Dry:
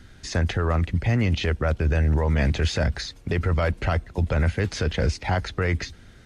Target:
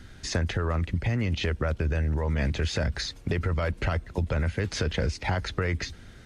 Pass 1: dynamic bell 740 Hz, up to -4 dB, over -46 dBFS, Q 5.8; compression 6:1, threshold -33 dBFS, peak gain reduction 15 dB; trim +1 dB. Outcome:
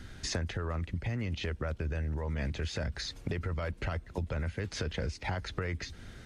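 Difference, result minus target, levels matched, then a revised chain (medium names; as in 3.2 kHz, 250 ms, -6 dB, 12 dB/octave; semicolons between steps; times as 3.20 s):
compression: peak gain reduction +7.5 dB
dynamic bell 740 Hz, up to -4 dB, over -46 dBFS, Q 5.8; compression 6:1, threshold -24 dBFS, peak gain reduction 7.5 dB; trim +1 dB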